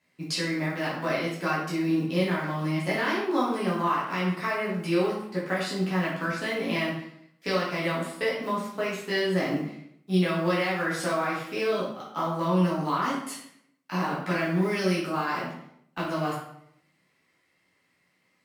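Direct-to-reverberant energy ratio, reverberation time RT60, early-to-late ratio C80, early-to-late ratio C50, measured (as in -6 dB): -7.5 dB, 0.75 s, 7.0 dB, 3.0 dB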